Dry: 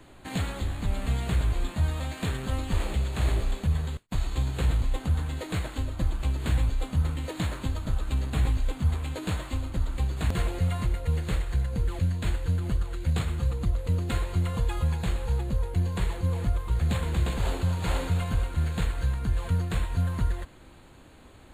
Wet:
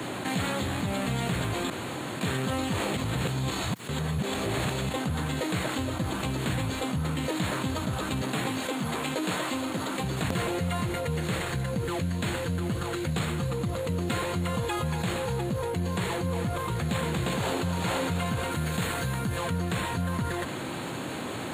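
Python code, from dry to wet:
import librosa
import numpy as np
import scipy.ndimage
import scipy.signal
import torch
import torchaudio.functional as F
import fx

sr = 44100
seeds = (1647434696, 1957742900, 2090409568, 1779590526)

y = fx.highpass(x, sr, hz=210.0, slope=12, at=(8.21, 10.04))
y = fx.high_shelf(y, sr, hz=9300.0, db=7.5, at=(18.51, 19.37))
y = fx.edit(y, sr, fx.room_tone_fill(start_s=1.7, length_s=0.51),
    fx.reverse_span(start_s=2.97, length_s=1.92), tone=tone)
y = scipy.signal.sosfilt(scipy.signal.butter(4, 120.0, 'highpass', fs=sr, output='sos'), y)
y = fx.notch(y, sr, hz=4700.0, q=25.0)
y = fx.env_flatten(y, sr, amount_pct=70)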